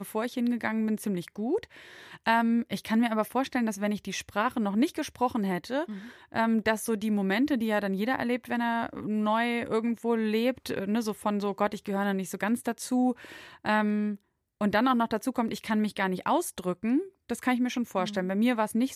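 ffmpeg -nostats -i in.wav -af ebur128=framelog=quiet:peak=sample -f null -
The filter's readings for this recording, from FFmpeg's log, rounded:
Integrated loudness:
  I:         -28.7 LUFS
  Threshold: -38.9 LUFS
Loudness range:
  LRA:         1.4 LU
  Threshold: -48.8 LUFS
  LRA low:   -29.5 LUFS
  LRA high:  -28.2 LUFS
Sample peak:
  Peak:      -10.6 dBFS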